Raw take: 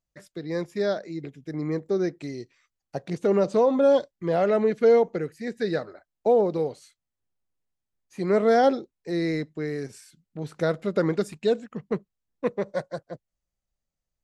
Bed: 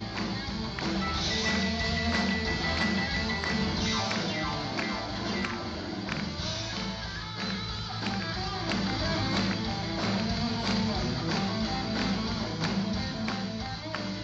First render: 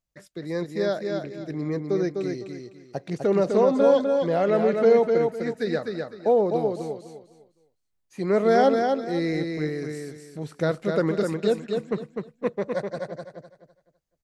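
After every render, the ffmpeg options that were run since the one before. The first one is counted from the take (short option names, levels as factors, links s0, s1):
-af "aecho=1:1:253|506|759|1012:0.596|0.161|0.0434|0.0117"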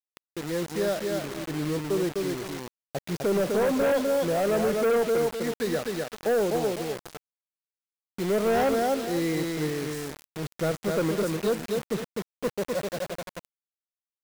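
-af "asoftclip=type=tanh:threshold=0.106,acrusher=bits=5:mix=0:aa=0.000001"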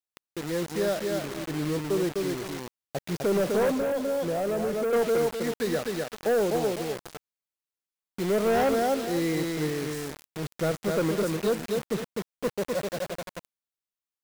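-filter_complex "[0:a]asettb=1/sr,asplit=3[s0][s1][s2];[s0]atrim=end=3.704[s3];[s1]atrim=start=3.7:end=4.93,asetpts=PTS-STARTPTS,afade=t=in:d=0.004:c=qsin,afade=t=out:st=1.226:d=0.004:c=qsin,acrossover=split=960|6300[s4][s5][s6];[s4]acompressor=threshold=0.0501:ratio=4[s7];[s5]acompressor=threshold=0.00794:ratio=4[s8];[s6]acompressor=threshold=0.00501:ratio=4[s9];[s7][s8][s9]amix=inputs=3:normalize=0[s10];[s2]atrim=start=4.926[s11];[s3][s10]acrossfade=d=0.004:c1=hsin:c2=qsin[s12];[s12][s11]acrossfade=d=0.004:c1=qsin:c2=hsin"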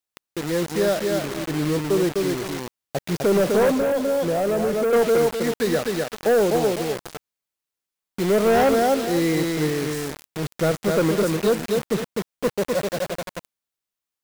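-af "volume=2"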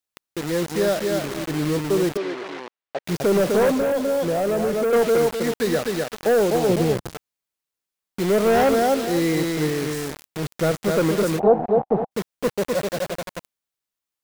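-filter_complex "[0:a]asettb=1/sr,asplit=3[s0][s1][s2];[s0]atrim=end=2.174[s3];[s1]atrim=start=2.17:end=3.05,asetpts=PTS-STARTPTS,afade=t=in:d=0.004:c=qsin,afade=t=out:st=0.876:d=0.004:c=qsin,highpass=410,lowpass=3100[s4];[s2]atrim=start=3.046[s5];[s3][s4]acrossfade=d=0.004:c1=hsin:c2=qsin[s6];[s6][s5]acrossfade=d=0.004:c1=qsin:c2=hsin,asettb=1/sr,asplit=3[s7][s8][s9];[s7]atrim=end=6.694[s10];[s8]atrim=start=6.69:end=7.14,asetpts=PTS-STARTPTS,afade=t=in:d=0.004:c=qsin,afade=t=out:st=0.446:d=0.004:c=qsin,equalizer=f=99:w=0.33:g=12.5[s11];[s9]atrim=start=7.136[s12];[s10][s11]acrossfade=d=0.004:c1=hsin:c2=qsin[s13];[s13][s12]acrossfade=d=0.004:c1=qsin:c2=hsin,asplit=3[s14][s15][s16];[s14]afade=t=out:st=11.38:d=0.02[s17];[s15]lowpass=f=770:t=q:w=8.6,afade=t=in:st=11.38:d=0.02,afade=t=out:st=12.1:d=0.02[s18];[s16]afade=t=in:st=12.1:d=0.02[s19];[s17][s18][s19]amix=inputs=3:normalize=0"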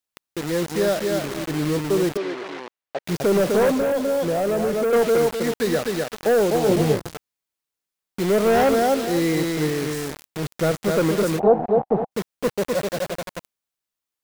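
-filter_complex "[0:a]asettb=1/sr,asplit=3[s0][s1][s2];[s0]atrim=end=6.644[s3];[s1]atrim=start=6.64:end=7.09,asetpts=PTS-STARTPTS,afade=t=in:d=0.004:c=qsin,afade=t=out:st=0.446:d=0.004:c=qsin,asplit=2[s4][s5];[s5]adelay=20,volume=0.562[s6];[s4][s6]amix=inputs=2:normalize=0,atrim=end_sample=19845[s7];[s2]atrim=start=7.086[s8];[s3][s7]acrossfade=d=0.004:c1=hsin:c2=qsin[s9];[s9][s8]acrossfade=d=0.004:c1=qsin:c2=hsin"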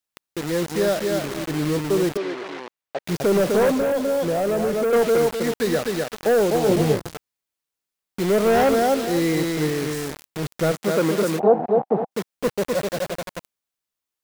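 -filter_complex "[0:a]asettb=1/sr,asplit=3[s0][s1][s2];[s0]atrim=end=10.724[s3];[s1]atrim=start=10.72:end=12.34,asetpts=PTS-STARTPTS,afade=t=in:d=0.004:c=qsin,afade=t=out:st=1.616:d=0.004:c=qsin,highpass=150[s4];[s2]atrim=start=12.336[s5];[s3][s4]acrossfade=d=0.004:c1=hsin:c2=qsin[s6];[s6][s5]acrossfade=d=0.004:c1=qsin:c2=hsin"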